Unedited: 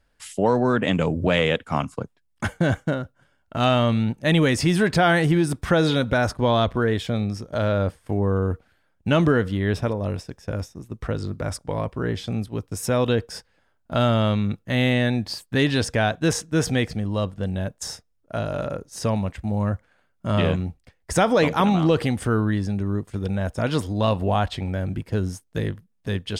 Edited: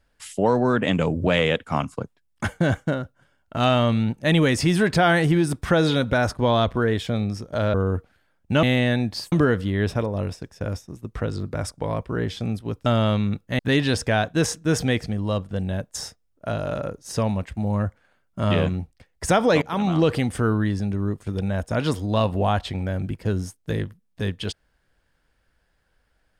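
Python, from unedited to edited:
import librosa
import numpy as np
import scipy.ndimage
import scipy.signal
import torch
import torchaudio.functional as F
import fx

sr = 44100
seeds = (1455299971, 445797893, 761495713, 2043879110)

y = fx.edit(x, sr, fx.cut(start_s=7.74, length_s=0.56),
    fx.cut(start_s=12.73, length_s=1.31),
    fx.move(start_s=14.77, length_s=0.69, to_s=9.19),
    fx.fade_in_from(start_s=21.49, length_s=0.49, curve='qsin', floor_db=-19.0), tone=tone)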